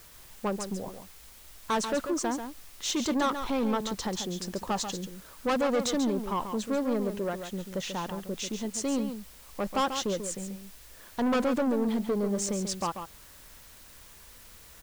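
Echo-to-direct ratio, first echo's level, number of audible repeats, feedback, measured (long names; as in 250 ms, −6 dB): −8.5 dB, −8.5 dB, 1, repeats not evenly spaced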